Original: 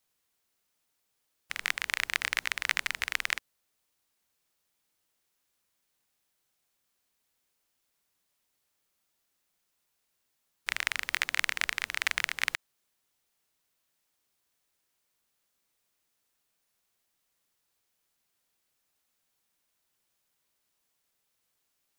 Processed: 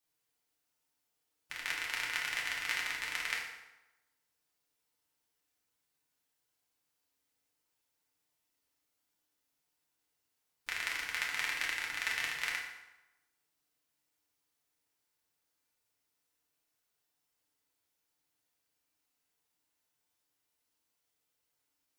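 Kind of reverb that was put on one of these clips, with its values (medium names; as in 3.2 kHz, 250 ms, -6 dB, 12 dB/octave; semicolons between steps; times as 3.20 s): FDN reverb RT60 1 s, low-frequency decay 0.9×, high-frequency decay 0.75×, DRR -4 dB; trim -9.5 dB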